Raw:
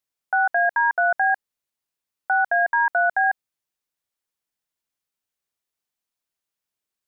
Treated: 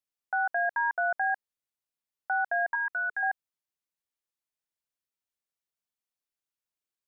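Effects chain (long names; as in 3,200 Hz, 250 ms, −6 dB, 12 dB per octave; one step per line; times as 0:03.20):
0:02.75–0:03.23: flat-topped bell 680 Hz −14 dB 1.1 octaves
level −8 dB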